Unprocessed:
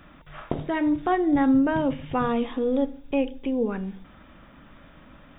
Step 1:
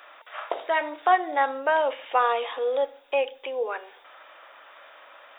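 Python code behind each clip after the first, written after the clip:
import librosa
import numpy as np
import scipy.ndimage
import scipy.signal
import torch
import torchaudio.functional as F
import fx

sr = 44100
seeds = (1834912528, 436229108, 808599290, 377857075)

y = scipy.signal.sosfilt(scipy.signal.cheby2(4, 50, 210.0, 'highpass', fs=sr, output='sos'), x)
y = y * 10.0 ** (6.0 / 20.0)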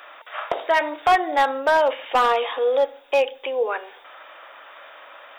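y = np.clip(x, -10.0 ** (-17.0 / 20.0), 10.0 ** (-17.0 / 20.0))
y = fx.quant_float(y, sr, bits=8)
y = y * 10.0 ** (5.5 / 20.0)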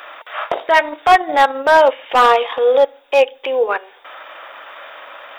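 y = fx.transient(x, sr, attack_db=-5, sustain_db=-9)
y = y * 10.0 ** (8.5 / 20.0)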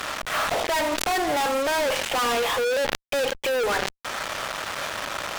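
y = fx.fuzz(x, sr, gain_db=39.0, gate_db=-35.0)
y = fx.sustainer(y, sr, db_per_s=42.0)
y = y * 10.0 ** (-9.0 / 20.0)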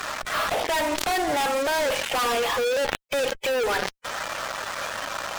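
y = fx.spec_quant(x, sr, step_db=15)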